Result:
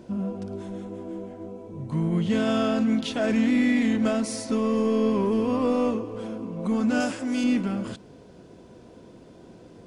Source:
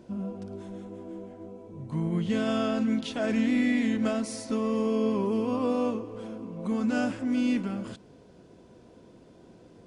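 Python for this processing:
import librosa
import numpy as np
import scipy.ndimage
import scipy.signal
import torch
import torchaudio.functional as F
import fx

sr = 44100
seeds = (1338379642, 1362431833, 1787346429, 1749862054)

p1 = fx.bass_treble(x, sr, bass_db=-9, treble_db=8, at=(7.0, 7.44))
p2 = np.clip(p1, -10.0 ** (-30.0 / 20.0), 10.0 ** (-30.0 / 20.0))
p3 = p1 + (p2 * 10.0 ** (-7.5 / 20.0))
y = p3 * 10.0 ** (2.0 / 20.0)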